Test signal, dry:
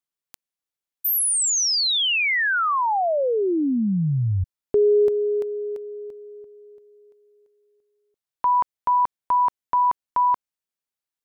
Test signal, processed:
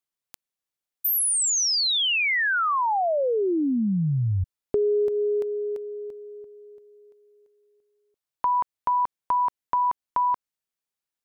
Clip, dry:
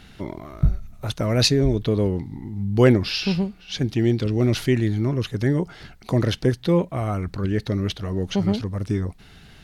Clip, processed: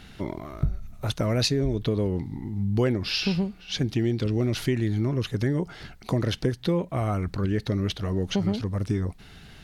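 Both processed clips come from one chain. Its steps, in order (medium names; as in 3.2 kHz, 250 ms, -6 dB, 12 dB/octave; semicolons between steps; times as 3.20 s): compression 4:1, threshold -21 dBFS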